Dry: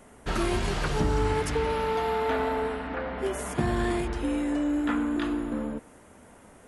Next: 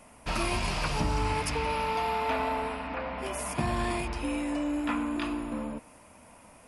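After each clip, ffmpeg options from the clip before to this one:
ffmpeg -i in.wav -af "equalizer=frequency=400:width_type=o:width=0.33:gain=-9,equalizer=frequency=630:width_type=o:width=0.33:gain=4,equalizer=frequency=1000:width_type=o:width=0.33:gain=7,equalizer=frequency=1600:width_type=o:width=0.33:gain=-3,equalizer=frequency=2500:width_type=o:width=0.33:gain=10,equalizer=frequency=5000:width_type=o:width=0.33:gain=9,equalizer=frequency=10000:width_type=o:width=0.33:gain=7,volume=-3dB" out.wav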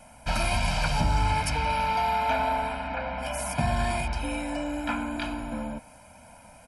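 ffmpeg -i in.wav -af "aecho=1:1:1.3:0.99" out.wav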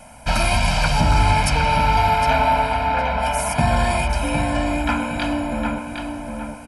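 ffmpeg -i in.wav -filter_complex "[0:a]asplit=2[link_01][link_02];[link_02]adelay=760,lowpass=frequency=4000:poles=1,volume=-5dB,asplit=2[link_03][link_04];[link_04]adelay=760,lowpass=frequency=4000:poles=1,volume=0.34,asplit=2[link_05][link_06];[link_06]adelay=760,lowpass=frequency=4000:poles=1,volume=0.34,asplit=2[link_07][link_08];[link_08]adelay=760,lowpass=frequency=4000:poles=1,volume=0.34[link_09];[link_01][link_03][link_05][link_07][link_09]amix=inputs=5:normalize=0,volume=7.5dB" out.wav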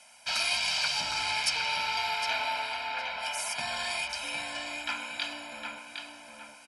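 ffmpeg -i in.wav -af "bandpass=frequency=4500:width_type=q:width=1.2:csg=0" out.wav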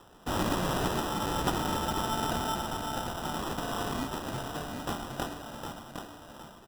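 ffmpeg -i in.wav -af "acrusher=samples=20:mix=1:aa=0.000001" out.wav

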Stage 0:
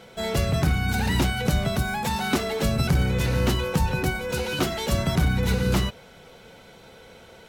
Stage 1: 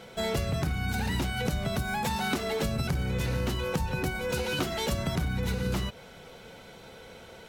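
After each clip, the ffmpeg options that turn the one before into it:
ffmpeg -i in.wav -af "acompressor=threshold=-26dB:ratio=6" out.wav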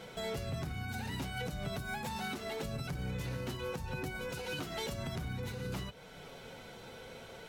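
ffmpeg -i in.wav -af "alimiter=level_in=4dB:limit=-24dB:level=0:latency=1:release=391,volume=-4dB,flanger=delay=6.4:depth=2.1:regen=-49:speed=0.66:shape=triangular,volume=2.5dB" out.wav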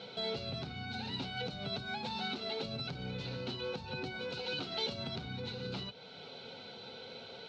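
ffmpeg -i in.wav -af "highpass=150,equalizer=frequency=160:width_type=q:width=4:gain=-5,equalizer=frequency=320:width_type=q:width=4:gain=-6,equalizer=frequency=610:width_type=q:width=4:gain=-4,equalizer=frequency=1100:width_type=q:width=4:gain=-8,equalizer=frequency=1900:width_type=q:width=4:gain=-9,equalizer=frequency=4100:width_type=q:width=4:gain=10,lowpass=frequency=4600:width=0.5412,lowpass=frequency=4600:width=1.3066,bandreject=frequency=1700:width=15,volume=2.5dB" out.wav

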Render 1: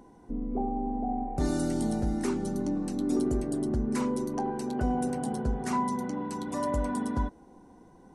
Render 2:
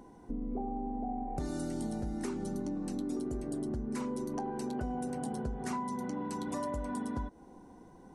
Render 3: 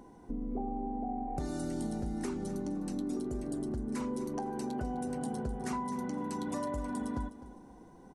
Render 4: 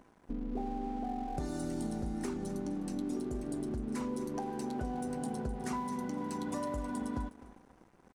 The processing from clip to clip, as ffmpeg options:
ffmpeg -i in.wav -af "acompressor=threshold=-33dB:ratio=6" out.wav
ffmpeg -i in.wav -af "aecho=1:1:255|510|765:0.168|0.0487|0.0141" out.wav
ffmpeg -i in.wav -af "aeval=exprs='sgn(val(0))*max(abs(val(0))-0.00188,0)':channel_layout=same" out.wav

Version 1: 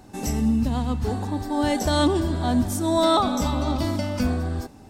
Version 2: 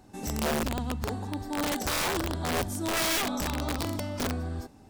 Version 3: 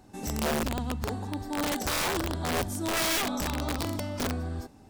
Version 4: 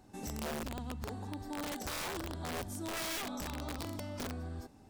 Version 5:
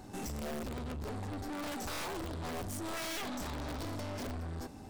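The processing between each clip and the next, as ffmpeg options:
ffmpeg -i in.wav -af "aeval=exprs='(mod(6.31*val(0)+1,2)-1)/6.31':channel_layout=same,volume=-7dB" out.wav
ffmpeg -i in.wav -af anull out.wav
ffmpeg -i in.wav -af "acompressor=threshold=-34dB:ratio=2.5,volume=-5dB" out.wav
ffmpeg -i in.wav -af "aeval=exprs='(tanh(282*val(0)+0.3)-tanh(0.3))/282':channel_layout=same,volume=11dB" out.wav

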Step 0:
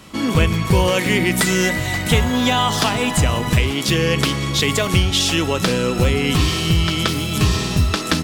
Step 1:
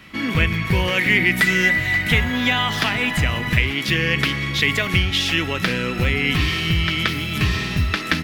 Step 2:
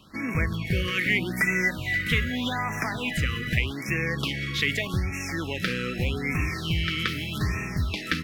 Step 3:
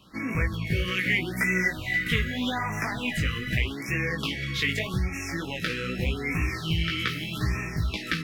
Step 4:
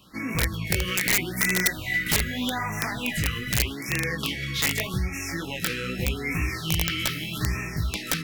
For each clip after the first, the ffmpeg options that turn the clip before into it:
ffmpeg -i in.wav -af "equalizer=frequency=500:width_type=o:width=1:gain=-4,equalizer=frequency=1000:width_type=o:width=1:gain=-4,equalizer=frequency=2000:width_type=o:width=1:gain=11,equalizer=frequency=8000:width_type=o:width=1:gain=-10,volume=-3.5dB" out.wav
ffmpeg -i in.wav -af "afftfilt=real='re*(1-between(b*sr/1024,730*pow(3900/730,0.5+0.5*sin(2*PI*0.82*pts/sr))/1.41,730*pow(3900/730,0.5+0.5*sin(2*PI*0.82*pts/sr))*1.41))':imag='im*(1-between(b*sr/1024,730*pow(3900/730,0.5+0.5*sin(2*PI*0.82*pts/sr))/1.41,730*pow(3900/730,0.5+0.5*sin(2*PI*0.82*pts/sr))*1.41))':win_size=1024:overlap=0.75,volume=-6.5dB" out.wav
ffmpeg -i in.wav -af "flanger=delay=15.5:depth=3.5:speed=2,volume=2dB" out.wav
ffmpeg -i in.wav -af "aeval=exprs='(mod(6.68*val(0)+1,2)-1)/6.68':channel_layout=same,crystalizer=i=1:c=0" out.wav

